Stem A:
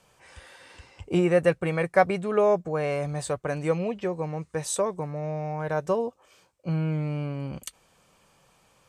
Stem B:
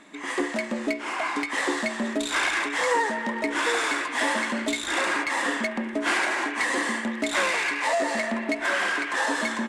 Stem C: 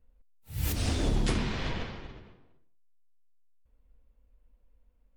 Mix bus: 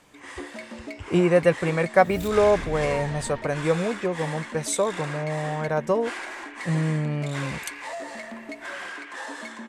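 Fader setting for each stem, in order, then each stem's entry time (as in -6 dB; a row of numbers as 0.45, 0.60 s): +2.5, -10.5, -7.5 dB; 0.00, 0.00, 1.55 s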